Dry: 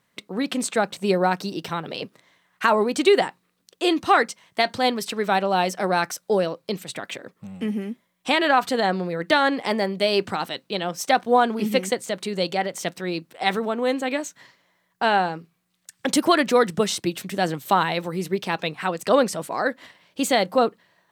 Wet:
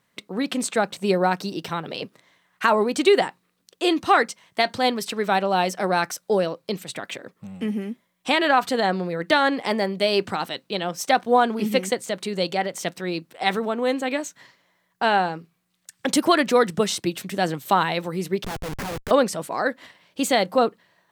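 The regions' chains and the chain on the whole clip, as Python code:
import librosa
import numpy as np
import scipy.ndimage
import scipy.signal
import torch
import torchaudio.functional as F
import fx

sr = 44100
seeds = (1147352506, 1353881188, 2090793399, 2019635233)

y = fx.chain(x, sr, fx.spacing_loss(db_at_10k=35),
    fx.schmitt(flips_db=-38.5), at=(18.44, 19.11))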